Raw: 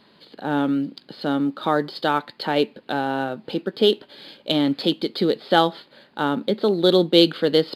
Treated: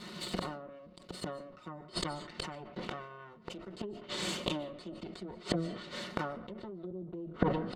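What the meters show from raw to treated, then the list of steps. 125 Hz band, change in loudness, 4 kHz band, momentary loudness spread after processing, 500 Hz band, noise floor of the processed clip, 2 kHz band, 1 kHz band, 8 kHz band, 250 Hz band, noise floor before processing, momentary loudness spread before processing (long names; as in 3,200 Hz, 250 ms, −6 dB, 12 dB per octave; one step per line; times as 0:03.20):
−10.0 dB, −18.0 dB, −17.0 dB, 13 LU, −19.5 dB, −55 dBFS, −15.0 dB, −17.5 dB, can't be measured, −17.5 dB, −56 dBFS, 11 LU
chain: lower of the sound and its delayed copy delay 5.5 ms
treble cut that deepens with the level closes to 430 Hz, closed at −13.5 dBFS
downward compressor 2 to 1, threshold −23 dBFS, peak gain reduction 5.5 dB
dynamic equaliser 4,000 Hz, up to −6 dB, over −51 dBFS, Q 2.4
gate with flip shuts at −27 dBFS, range −31 dB
parametric band 180 Hz +6 dB 0.25 octaves
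notch filter 530 Hz, Q 12
notch comb filter 820 Hz
comb and all-pass reverb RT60 0.71 s, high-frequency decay 0.45×, pre-delay 105 ms, DRR 19.5 dB
level that may fall only so fast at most 59 dB per second
level +11 dB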